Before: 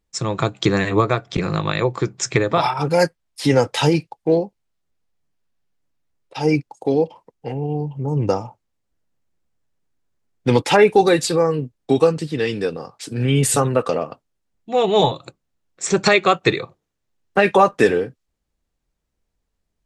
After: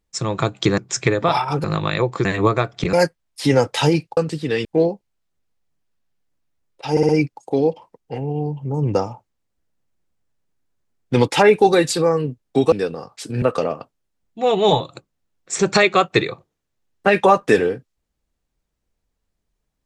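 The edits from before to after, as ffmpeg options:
-filter_complex "[0:a]asplit=12[s0][s1][s2][s3][s4][s5][s6][s7][s8][s9][s10][s11];[s0]atrim=end=0.782[s12];[s1]atrim=start=2.068:end=2.932[s13];[s2]atrim=start=1.458:end=2.072[s14];[s3]atrim=start=0.778:end=1.462[s15];[s4]atrim=start=2.928:end=4.172[s16];[s5]atrim=start=12.058:end=12.542[s17];[s6]atrim=start=4.168:end=6.492[s18];[s7]atrim=start=6.428:end=6.492[s19];[s8]atrim=start=6.428:end=6.492[s20];[s9]atrim=start=6.428:end=12.062[s21];[s10]atrim=start=12.538:end=13.242[s22];[s11]atrim=start=13.728[s23];[s12][s13]acrossfade=d=0.004:c1=hsin:c2=hsin[s24];[s24][s14]acrossfade=d=0.004:c1=hsin:c2=hsin[s25];[s25][s15]acrossfade=d=0.004:c1=hsin:c2=hsin[s26];[s26][s16]acrossfade=d=0.004:c1=hsin:c2=hsin[s27];[s27][s17]acrossfade=d=0.004:c1=hsin:c2=hsin[s28];[s28][s18]acrossfade=d=0.004:c1=hsin:c2=hsin[s29];[s29][s19]acrossfade=d=0.004:c1=hsin:c2=hsin[s30];[s30][s20]acrossfade=d=0.004:c1=hsin:c2=hsin[s31];[s31][s21]acrossfade=d=0.004:c1=hsin:c2=hsin[s32];[s32][s22]acrossfade=d=0.004:c1=hsin:c2=hsin[s33];[s33][s23]acrossfade=d=0.004:c1=hsin:c2=hsin"

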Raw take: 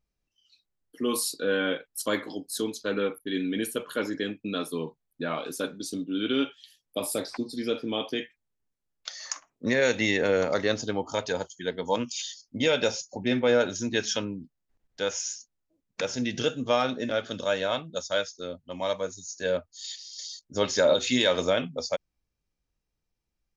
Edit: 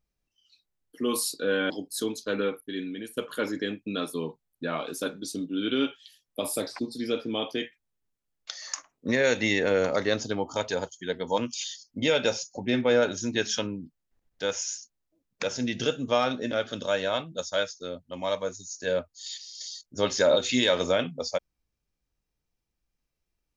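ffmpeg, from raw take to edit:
-filter_complex "[0:a]asplit=3[s0][s1][s2];[s0]atrim=end=1.702[s3];[s1]atrim=start=2.278:end=3.75,asetpts=PTS-STARTPTS,afade=t=out:st=0.722:d=0.75:silence=0.211349[s4];[s2]atrim=start=3.75,asetpts=PTS-STARTPTS,afade=t=in:d=0.004:c=hsin:silence=0.211349[s5];[s4][s5]concat=n=2:v=0:a=1[s6];[s3][s6]acrossfade=d=0.004:c1=hsin:c2=hsin"

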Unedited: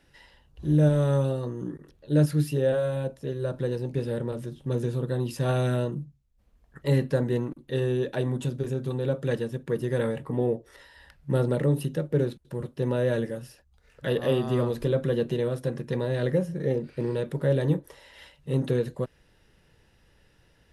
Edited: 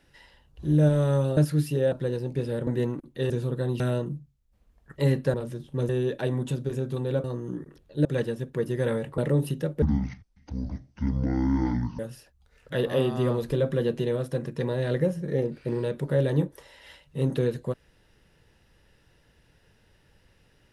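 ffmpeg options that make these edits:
-filter_complex "[0:a]asplit=13[s0][s1][s2][s3][s4][s5][s6][s7][s8][s9][s10][s11][s12];[s0]atrim=end=1.372[s13];[s1]atrim=start=2.178:end=2.732[s14];[s2]atrim=start=3.508:end=4.262[s15];[s3]atrim=start=7.198:end=7.832[s16];[s4]atrim=start=4.808:end=5.312[s17];[s5]atrim=start=5.658:end=7.202[s18];[s6]atrim=start=4.258:end=4.812[s19];[s7]atrim=start=7.828:end=9.182[s20];[s8]atrim=start=1.368:end=2.182[s21];[s9]atrim=start=9.178:end=10.312[s22];[s10]atrim=start=11.518:end=12.164[s23];[s11]atrim=start=12.16:end=13.31,asetpts=PTS-STARTPTS,asetrate=23373,aresample=44100[s24];[s12]atrim=start=13.306[s25];[s13][s14]acrossfade=d=0.004:c1=hsin:c2=hsin[s26];[s26][s15]acrossfade=d=0.004:c1=hsin:c2=hsin[s27];[s27][s16]acrossfade=d=0.004:c1=hsin:c2=hsin[s28];[s28][s17]acrossfade=d=0.004:c1=hsin:c2=hsin[s29];[s29][s18]acrossfade=d=0.004:c1=hsin:c2=hsin[s30];[s30][s19]acrossfade=d=0.004:c1=hsin:c2=hsin[s31];[s31][s20]acrossfade=d=0.004:c1=hsin:c2=hsin[s32];[s32][s21]acrossfade=d=0.004:c1=hsin:c2=hsin[s33];[s33][s22]acrossfade=d=0.004:c1=hsin:c2=hsin[s34];[s34][s23]acrossfade=d=0.004:c1=hsin:c2=hsin[s35];[s35][s24]acrossfade=d=0.004:c1=hsin:c2=hsin[s36];[s36][s25]acrossfade=d=0.004:c1=hsin:c2=hsin"

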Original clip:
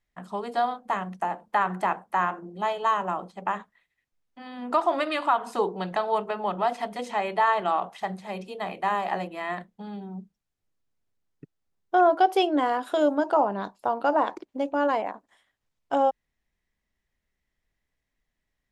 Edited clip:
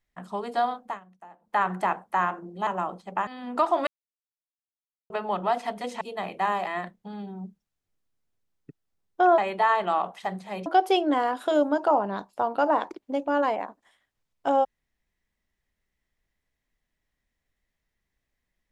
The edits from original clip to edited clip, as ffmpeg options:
-filter_complex "[0:a]asplit=11[s0][s1][s2][s3][s4][s5][s6][s7][s8][s9][s10];[s0]atrim=end=1,asetpts=PTS-STARTPTS,afade=t=out:st=0.81:d=0.19:silence=0.105925[s11];[s1]atrim=start=1:end=1.4,asetpts=PTS-STARTPTS,volume=0.106[s12];[s2]atrim=start=1.4:end=2.672,asetpts=PTS-STARTPTS,afade=t=in:d=0.19:silence=0.105925[s13];[s3]atrim=start=2.968:end=3.572[s14];[s4]atrim=start=4.418:end=5.02,asetpts=PTS-STARTPTS,afade=t=out:st=0.598:d=0.004:c=hsin[s15];[s5]atrim=start=5.02:end=6.25,asetpts=PTS-STARTPTS,volume=0[s16];[s6]atrim=start=6.25:end=7.162,asetpts=PTS-STARTPTS,afade=t=in:d=0.004:c=hsin[s17];[s7]atrim=start=8.438:end=9.102[s18];[s8]atrim=start=9.408:end=12.122[s19];[s9]atrim=start=7.158:end=8.442[s20];[s10]atrim=start=12.118[s21];[s11][s12][s13]concat=n=3:v=0:a=1[s22];[s22][s14]acrossfade=d=0.004:c1=hsin:c2=hsin[s23];[s15][s16][s17]concat=n=3:v=0:a=1[s24];[s23][s24]acrossfade=d=0.004:c1=hsin:c2=hsin[s25];[s25][s18]acrossfade=d=0.004:c1=hsin:c2=hsin[s26];[s26][s19]acrossfade=d=0.004:c1=hsin:c2=hsin[s27];[s27][s20]acrossfade=d=0.004:c1=hsin:c2=hsin[s28];[s28][s21]acrossfade=d=0.004:c1=hsin:c2=hsin"

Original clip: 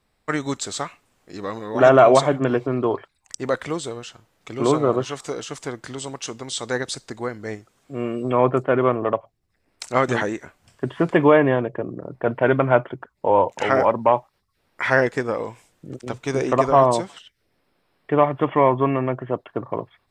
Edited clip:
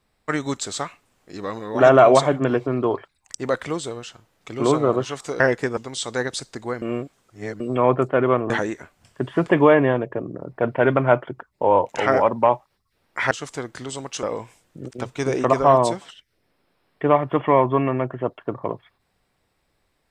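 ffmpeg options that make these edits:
-filter_complex "[0:a]asplit=8[s0][s1][s2][s3][s4][s5][s6][s7];[s0]atrim=end=5.402[s8];[s1]atrim=start=14.938:end=15.312[s9];[s2]atrim=start=6.318:end=7.372[s10];[s3]atrim=start=7.368:end=8.152,asetpts=PTS-STARTPTS,areverse[s11];[s4]atrim=start=8.148:end=9.052[s12];[s5]atrim=start=10.128:end=14.942[s13];[s6]atrim=start=5.398:end=6.322[s14];[s7]atrim=start=15.308[s15];[s8][s9]acrossfade=d=0.004:c1=hsin:c2=hsin[s16];[s16][s10]acrossfade=d=0.004:c1=hsin:c2=hsin[s17];[s17][s11]acrossfade=d=0.004:c1=hsin:c2=hsin[s18];[s18][s12]acrossfade=d=0.004:c1=hsin:c2=hsin[s19];[s19][s13]acrossfade=d=0.004:c1=hsin:c2=hsin[s20];[s20][s14]acrossfade=d=0.004:c1=hsin:c2=hsin[s21];[s21][s15]acrossfade=d=0.004:c1=hsin:c2=hsin"

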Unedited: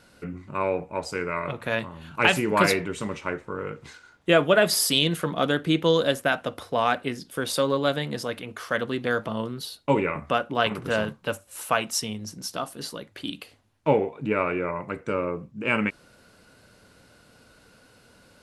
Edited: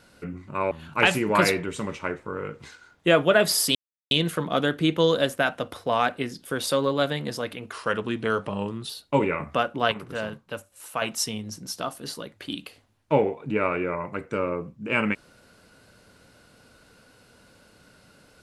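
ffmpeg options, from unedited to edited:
-filter_complex "[0:a]asplit=7[s0][s1][s2][s3][s4][s5][s6];[s0]atrim=end=0.712[s7];[s1]atrim=start=1.928:end=4.97,asetpts=PTS-STARTPTS,afade=t=out:st=3.038:d=0.004:c=hsin,apad=pad_dur=0.36[s8];[s2]atrim=start=4.97:end=8.584,asetpts=PTS-STARTPTS,afade=t=in:d=0.004:c=hsin[s9];[s3]atrim=start=8.58:end=9.65,asetpts=PTS-STARTPTS,asetrate=40131,aresample=44100[s10];[s4]atrim=start=9.646:end=10.672[s11];[s5]atrim=start=10.668:end=11.772,asetpts=PTS-STARTPTS,volume=0.501[s12];[s6]atrim=start=11.768[s13];[s8][s9]concat=n=2:v=0:a=1[s14];[s7][s14]acrossfade=d=0.004:c1=hsin:c2=hsin[s15];[s15][s10]acrossfade=d=0.004:c1=hsin:c2=hsin[s16];[s16][s11]acrossfade=d=0.004:c1=hsin:c2=hsin[s17];[s17][s12]acrossfade=d=0.004:c1=hsin:c2=hsin[s18];[s18][s13]acrossfade=d=0.004:c1=hsin:c2=hsin"

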